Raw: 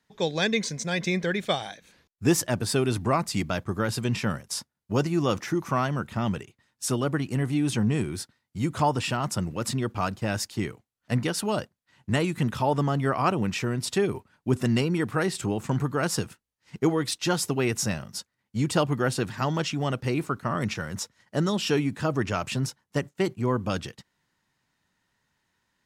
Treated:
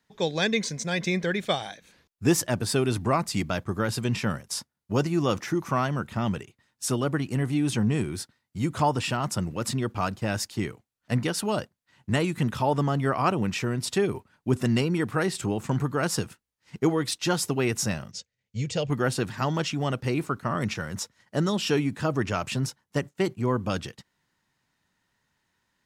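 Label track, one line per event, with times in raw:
18.110000	18.900000	EQ curve 120 Hz 0 dB, 330 Hz -13 dB, 470 Hz +1 dB, 1100 Hz -18 dB, 2300 Hz -1 dB, 4600 Hz -3 dB, 6700 Hz 0 dB, 13000 Hz -29 dB

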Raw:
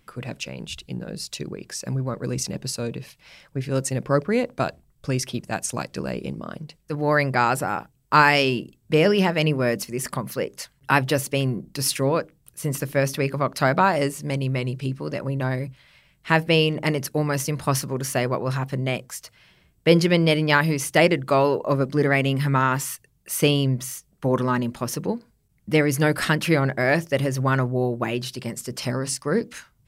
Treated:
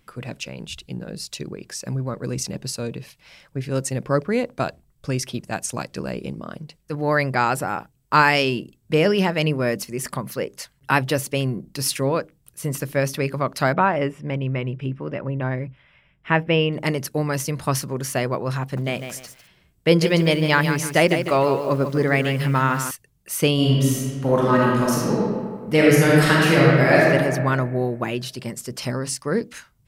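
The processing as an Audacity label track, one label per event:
13.730000	16.730000	polynomial smoothing over 25 samples
18.620000	22.910000	lo-fi delay 0.15 s, feedback 35%, word length 7-bit, level -8 dB
23.540000	27.020000	reverb throw, RT60 1.8 s, DRR -5 dB

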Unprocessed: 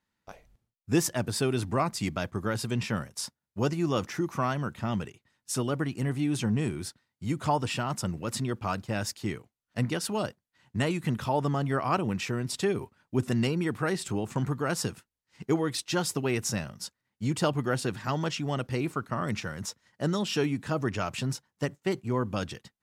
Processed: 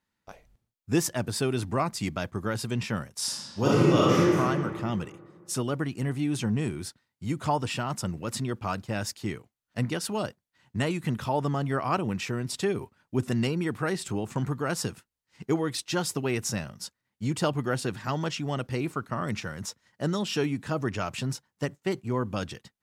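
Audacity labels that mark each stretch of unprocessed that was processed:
3.170000	4.380000	reverb throw, RT60 2 s, DRR -8 dB

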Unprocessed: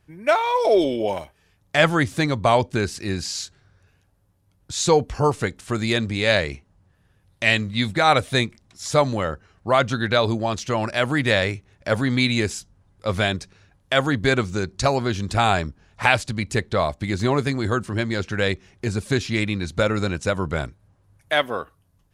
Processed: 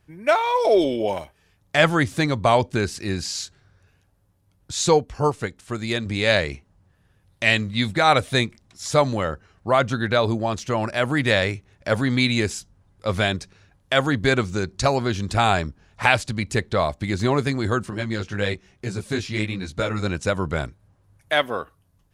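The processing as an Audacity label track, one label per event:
4.930000	6.060000	upward expander, over -26 dBFS
9.700000	11.170000	bell 4100 Hz -3.5 dB 1.9 oct
17.900000	20.060000	chorus 1.1 Hz, delay 15 ms, depth 5.1 ms

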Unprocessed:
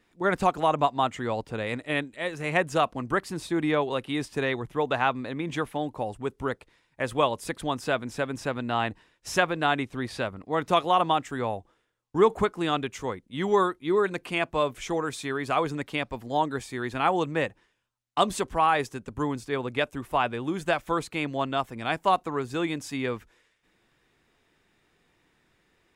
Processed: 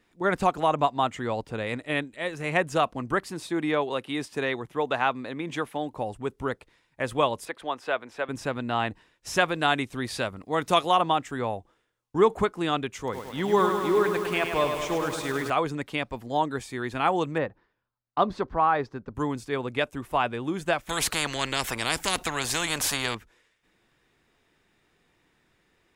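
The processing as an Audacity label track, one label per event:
3.290000	5.930000	HPF 190 Hz 6 dB/oct
7.450000	8.290000	three-band isolator lows -18 dB, under 370 Hz, highs -13 dB, over 3700 Hz
9.400000	10.970000	high shelf 4000 Hz +9.5 dB
12.970000	15.500000	lo-fi delay 0.103 s, feedback 80%, word length 7-bit, level -6 dB
17.380000	19.150000	EQ curve 1400 Hz 0 dB, 3000 Hz -12 dB, 4500 Hz -6 dB, 8200 Hz -28 dB
20.890000	23.150000	spectral compressor 4:1

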